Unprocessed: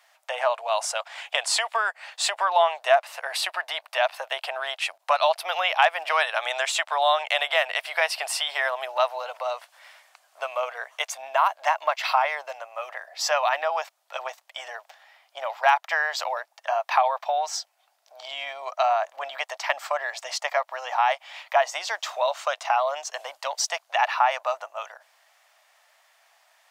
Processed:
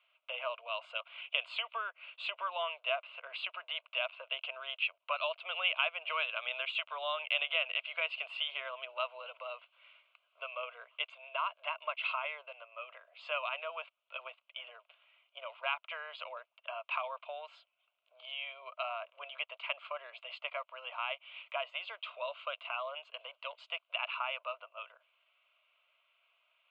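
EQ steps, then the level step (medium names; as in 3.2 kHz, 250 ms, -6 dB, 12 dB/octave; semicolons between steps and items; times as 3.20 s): four-pole ladder low-pass 3.1 kHz, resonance 60%; static phaser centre 1.2 kHz, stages 8; band-stop 1.8 kHz, Q 14; -2.5 dB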